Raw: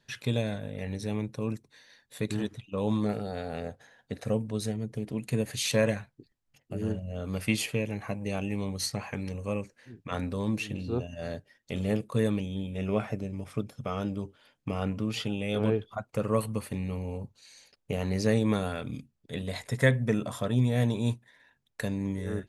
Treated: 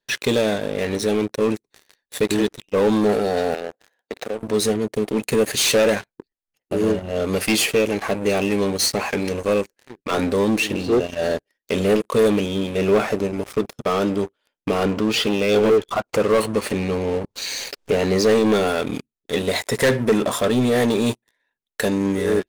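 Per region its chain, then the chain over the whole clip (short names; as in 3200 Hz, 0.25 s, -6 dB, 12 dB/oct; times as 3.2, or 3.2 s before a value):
3.54–4.43 median filter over 5 samples + HPF 240 Hz + compressor 4:1, threshold -41 dBFS
14.85–18.68 LPF 7300 Hz + upward compressor, threshold -31 dBFS
whole clip: bell 110 Hz -14.5 dB 1.6 oct; sample leveller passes 5; bell 390 Hz +5.5 dB 0.69 oct; gain -2 dB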